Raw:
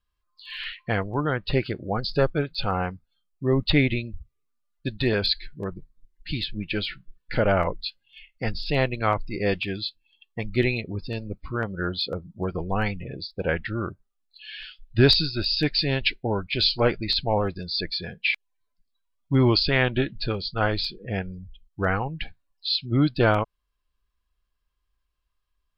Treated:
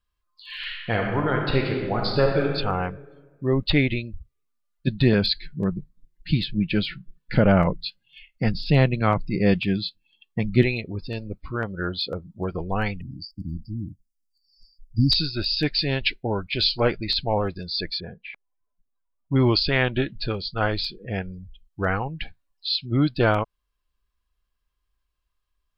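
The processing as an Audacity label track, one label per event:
0.570000	2.530000	thrown reverb, RT60 1.6 s, DRR 0.5 dB
4.870000	10.630000	parametric band 170 Hz +12.5 dB 1.2 octaves
13.010000	15.120000	linear-phase brick-wall band-stop 320–4,500 Hz
18.000000	19.360000	Chebyshev low-pass filter 1,000 Hz

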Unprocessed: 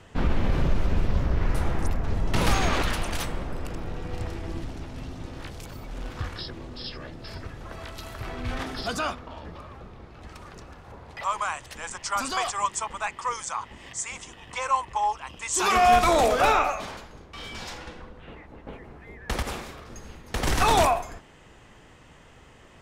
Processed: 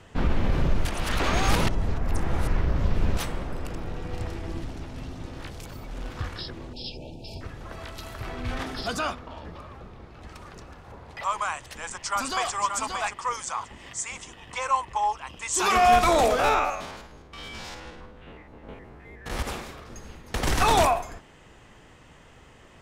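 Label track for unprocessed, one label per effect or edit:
0.850000	3.170000	reverse
6.730000	7.410000	linear-phase brick-wall band-stop 940–2,300 Hz
11.770000	12.550000	delay throw 580 ms, feedback 20%, level −6 dB
16.390000	19.400000	spectrum averaged block by block every 50 ms

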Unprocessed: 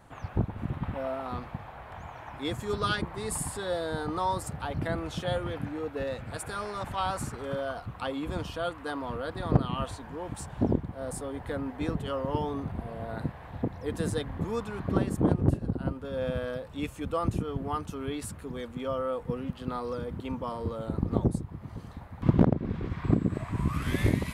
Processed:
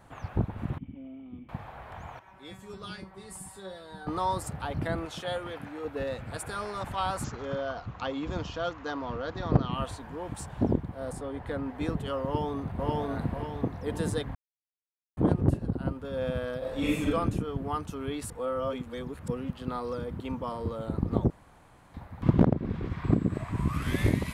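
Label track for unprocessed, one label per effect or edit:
0.780000	1.490000	formant resonators in series i
2.190000	4.070000	tuned comb filter 190 Hz, decay 0.24 s, mix 90%
5.050000	5.850000	low-shelf EQ 260 Hz −12 dB
7.240000	9.720000	bad sample-rate conversion rate divided by 3×, down none, up filtered
11.110000	11.750000	low-pass filter 3,300 Hz → 7,100 Hz 6 dB per octave
12.250000	12.880000	delay throw 540 ms, feedback 45%, level 0 dB
14.350000	15.170000	silence
16.580000	17.070000	thrown reverb, RT60 0.95 s, DRR −7.5 dB
18.300000	19.280000	reverse
21.300000	21.940000	fill with room tone

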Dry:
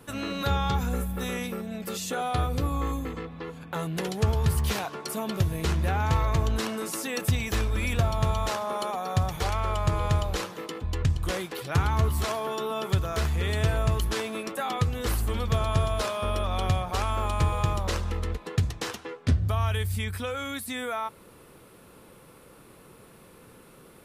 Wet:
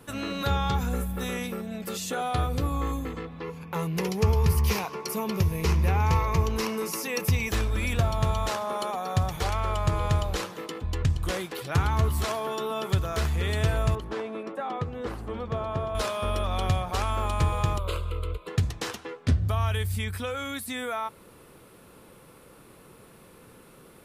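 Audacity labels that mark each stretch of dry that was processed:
3.420000	7.490000	EQ curve with evenly spaced ripples crests per octave 0.82, crest to trough 8 dB
13.950000	15.950000	resonant band-pass 470 Hz, Q 0.51
17.780000	18.480000	phaser with its sweep stopped centre 1,200 Hz, stages 8

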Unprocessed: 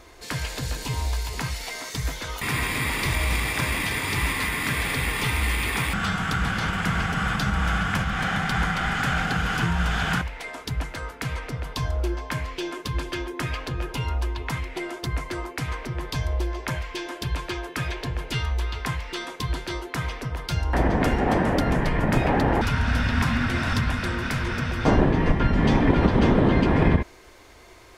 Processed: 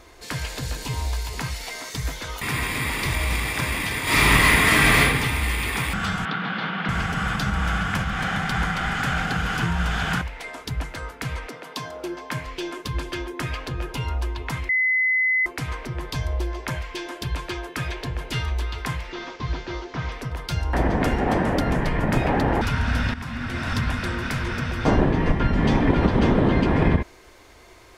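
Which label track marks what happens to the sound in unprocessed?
4.030000	5.000000	thrown reverb, RT60 1.1 s, DRR −10 dB
6.250000	6.890000	elliptic band-pass filter 170–3,900 Hz
8.260000	9.300000	floating-point word with a short mantissa of 8 bits
11.470000	12.450000	high-pass filter 260 Hz → 90 Hz 24 dB per octave
14.690000	15.460000	beep over 2,030 Hz −17.5 dBFS
17.630000	18.050000	delay throw 570 ms, feedback 60%, level −10 dB
19.110000	20.120000	linear delta modulator 32 kbit/s, step −41.5 dBFS
23.140000	23.850000	fade in, from −14.5 dB

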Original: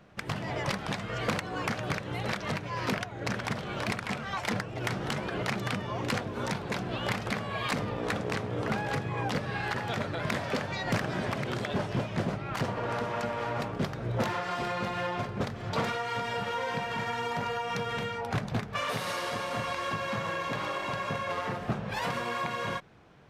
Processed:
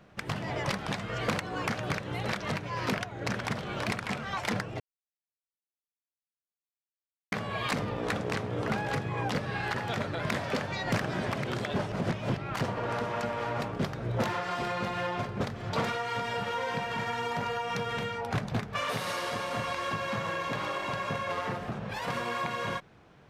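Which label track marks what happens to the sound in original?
4.800000	7.320000	silence
11.920000	12.370000	reverse
21.650000	22.080000	downward compressor 3 to 1, threshold −32 dBFS

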